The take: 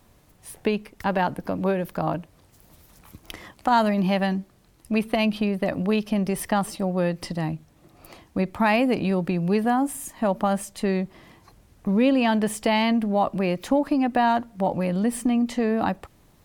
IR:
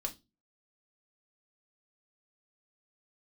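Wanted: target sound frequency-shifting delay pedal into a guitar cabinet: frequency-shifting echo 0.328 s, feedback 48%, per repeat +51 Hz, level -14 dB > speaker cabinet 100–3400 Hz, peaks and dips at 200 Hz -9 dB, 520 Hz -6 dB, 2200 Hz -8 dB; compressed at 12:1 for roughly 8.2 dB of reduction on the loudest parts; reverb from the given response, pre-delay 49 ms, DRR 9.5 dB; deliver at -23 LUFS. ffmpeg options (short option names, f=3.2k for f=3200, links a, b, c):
-filter_complex "[0:a]acompressor=threshold=-24dB:ratio=12,asplit=2[a][b];[1:a]atrim=start_sample=2205,adelay=49[c];[b][c]afir=irnorm=-1:irlink=0,volume=-10dB[d];[a][d]amix=inputs=2:normalize=0,asplit=6[e][f][g][h][i][j];[f]adelay=328,afreqshift=51,volume=-14dB[k];[g]adelay=656,afreqshift=102,volume=-20.4dB[l];[h]adelay=984,afreqshift=153,volume=-26.8dB[m];[i]adelay=1312,afreqshift=204,volume=-33.1dB[n];[j]adelay=1640,afreqshift=255,volume=-39.5dB[o];[e][k][l][m][n][o]amix=inputs=6:normalize=0,highpass=100,equalizer=f=200:t=q:w=4:g=-9,equalizer=f=520:t=q:w=4:g=-6,equalizer=f=2.2k:t=q:w=4:g=-8,lowpass=f=3.4k:w=0.5412,lowpass=f=3.4k:w=1.3066,volume=9.5dB"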